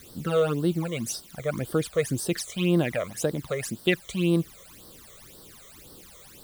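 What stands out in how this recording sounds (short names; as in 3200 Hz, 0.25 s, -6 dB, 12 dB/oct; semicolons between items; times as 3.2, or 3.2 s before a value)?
a quantiser's noise floor 8-bit, dither triangular; phasing stages 12, 1.9 Hz, lowest notch 260–2400 Hz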